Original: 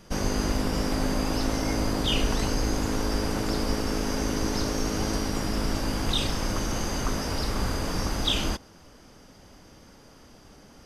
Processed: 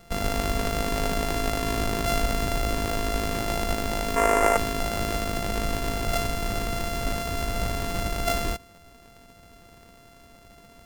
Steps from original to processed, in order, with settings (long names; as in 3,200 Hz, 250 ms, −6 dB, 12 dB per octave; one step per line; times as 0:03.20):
samples sorted by size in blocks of 64 samples
0:04.16–0:04.57: octave-band graphic EQ 125/500/1,000/2,000/4,000/8,000 Hz −12/+9/+11/+9/−9/+8 dB